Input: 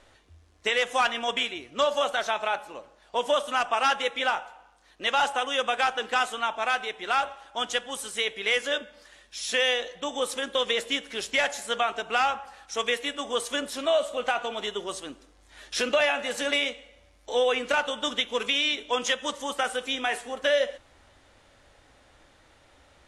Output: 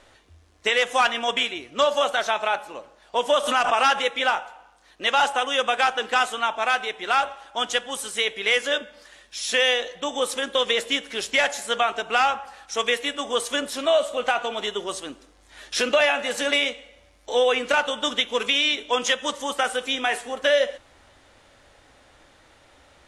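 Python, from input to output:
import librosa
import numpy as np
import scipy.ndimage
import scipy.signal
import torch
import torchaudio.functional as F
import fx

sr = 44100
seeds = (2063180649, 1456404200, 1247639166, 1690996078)

y = fx.low_shelf(x, sr, hz=150.0, db=-3.5)
y = fx.pre_swell(y, sr, db_per_s=66.0, at=(3.31, 4.05))
y = y * 10.0 ** (4.0 / 20.0)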